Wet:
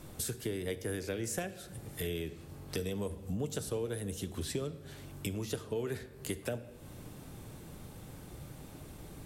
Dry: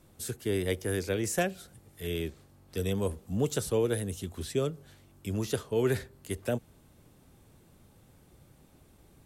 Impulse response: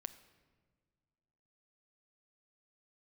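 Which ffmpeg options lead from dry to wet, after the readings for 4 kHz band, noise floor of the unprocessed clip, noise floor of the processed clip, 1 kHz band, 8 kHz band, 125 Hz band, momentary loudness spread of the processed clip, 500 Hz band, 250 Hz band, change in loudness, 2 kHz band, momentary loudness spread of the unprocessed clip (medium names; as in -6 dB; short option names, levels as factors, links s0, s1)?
-3.0 dB, -60 dBFS, -51 dBFS, -7.0 dB, -2.5 dB, -5.5 dB, 13 LU, -7.0 dB, -5.5 dB, -7.0 dB, -6.0 dB, 11 LU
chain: -filter_complex "[0:a]acompressor=threshold=0.00562:ratio=6[s0];[1:a]atrim=start_sample=2205[s1];[s0][s1]afir=irnorm=-1:irlink=0,volume=5.01"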